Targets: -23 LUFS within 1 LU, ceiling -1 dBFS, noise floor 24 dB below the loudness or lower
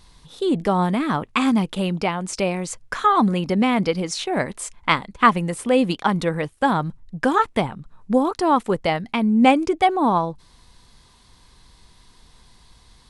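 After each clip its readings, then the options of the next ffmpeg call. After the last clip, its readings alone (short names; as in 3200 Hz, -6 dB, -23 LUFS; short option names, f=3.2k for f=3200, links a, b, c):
loudness -21.0 LUFS; peak -1.5 dBFS; loudness target -23.0 LUFS
-> -af "volume=-2dB"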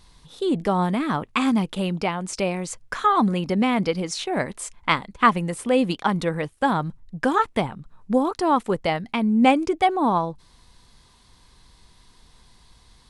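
loudness -23.0 LUFS; peak -3.5 dBFS; noise floor -56 dBFS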